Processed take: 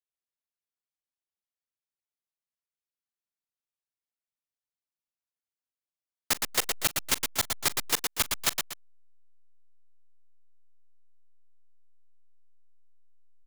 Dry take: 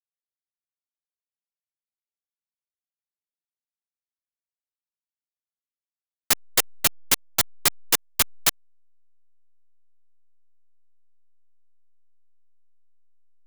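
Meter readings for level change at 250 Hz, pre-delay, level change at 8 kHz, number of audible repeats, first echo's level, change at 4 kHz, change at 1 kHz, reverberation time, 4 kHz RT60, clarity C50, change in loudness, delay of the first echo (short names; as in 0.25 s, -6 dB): -3.0 dB, none, -5.0 dB, 3, -19.0 dB, -3.5 dB, -3.0 dB, none, none, none, -5.5 dB, 40 ms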